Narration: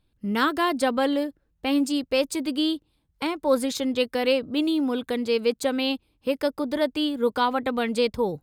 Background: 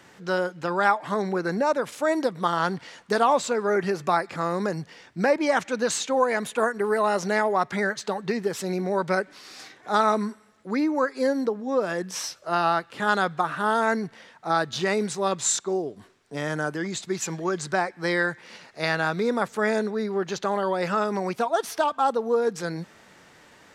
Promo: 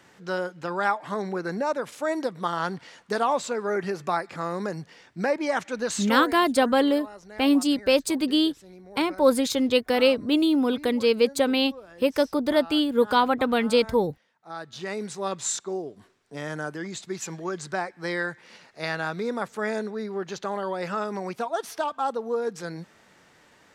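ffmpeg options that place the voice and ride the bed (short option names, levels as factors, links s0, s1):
-filter_complex "[0:a]adelay=5750,volume=1.33[s0];[1:a]volume=3.98,afade=t=out:st=6.06:d=0.32:silence=0.149624,afade=t=in:st=14.38:d=0.87:silence=0.16788[s1];[s0][s1]amix=inputs=2:normalize=0"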